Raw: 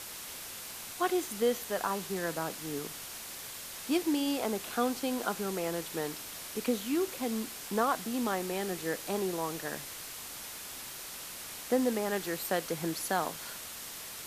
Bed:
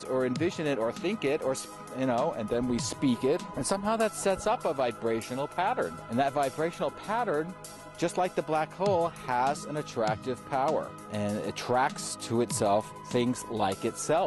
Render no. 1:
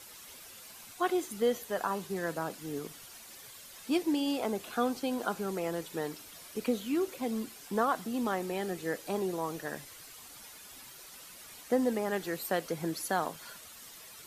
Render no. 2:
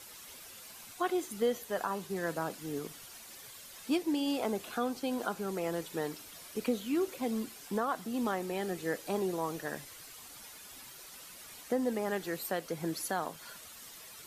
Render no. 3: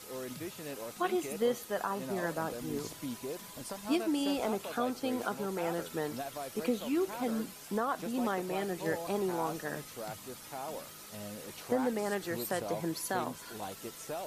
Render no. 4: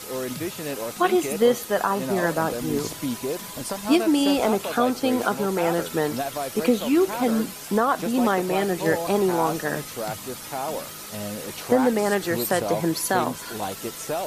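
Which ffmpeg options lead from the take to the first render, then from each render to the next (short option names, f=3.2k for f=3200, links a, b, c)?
-af "afftdn=nr=10:nf=-44"
-af "alimiter=limit=-20.5dB:level=0:latency=1:release=465"
-filter_complex "[1:a]volume=-13.5dB[a];[0:a][a]amix=inputs=2:normalize=0"
-af "volume=11.5dB"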